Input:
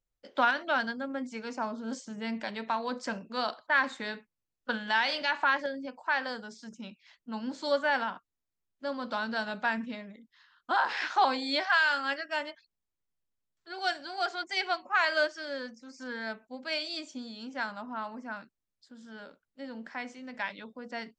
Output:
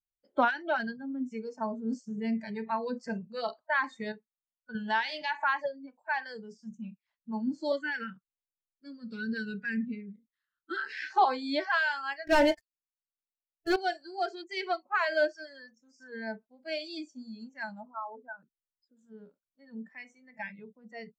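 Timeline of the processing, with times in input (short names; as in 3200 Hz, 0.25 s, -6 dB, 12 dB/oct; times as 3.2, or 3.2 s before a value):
4.12–4.75 gain -7.5 dB
7.72–11.1 band shelf 790 Hz -15.5 dB 1 oct
12.27–13.76 sample leveller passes 5
17.85–18.97 formant sharpening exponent 2
whole clip: tilt shelf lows +8.5 dB, about 1500 Hz; spectral noise reduction 21 dB; dynamic EQ 4200 Hz, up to +3 dB, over -46 dBFS, Q 0.76; gain -3 dB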